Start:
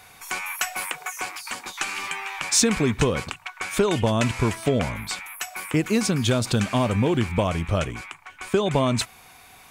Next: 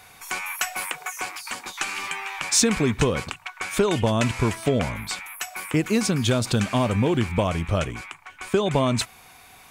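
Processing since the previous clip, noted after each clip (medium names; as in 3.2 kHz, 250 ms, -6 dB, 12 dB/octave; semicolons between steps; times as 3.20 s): no audible change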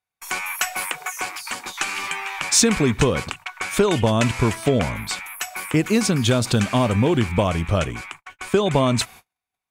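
gate -43 dBFS, range -42 dB; trim +3 dB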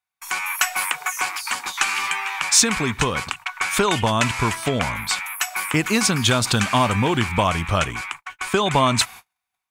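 resonant low shelf 710 Hz -6.5 dB, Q 1.5; level rider gain up to 5 dB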